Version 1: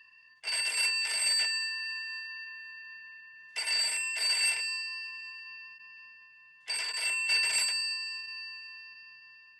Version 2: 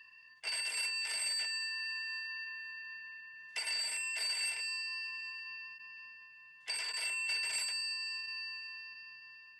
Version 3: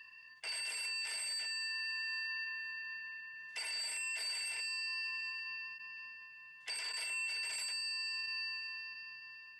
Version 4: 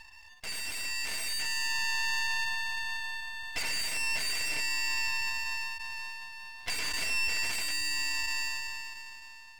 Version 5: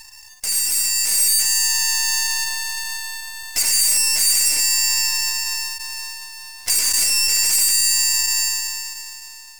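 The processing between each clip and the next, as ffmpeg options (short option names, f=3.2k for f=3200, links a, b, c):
-af "acompressor=threshold=-37dB:ratio=2.5"
-af "alimiter=level_in=10dB:limit=-24dB:level=0:latency=1:release=33,volume=-10dB,volume=2dB"
-filter_complex "[0:a]acrossover=split=400|4400[a][b][c];[b]dynaudnorm=f=130:g=17:m=7dB[d];[a][d][c]amix=inputs=3:normalize=0,aeval=exprs='max(val(0),0)':c=same,volume=7dB"
-af "aexciter=amount=8.9:drive=3.3:freq=4.9k,volume=4dB"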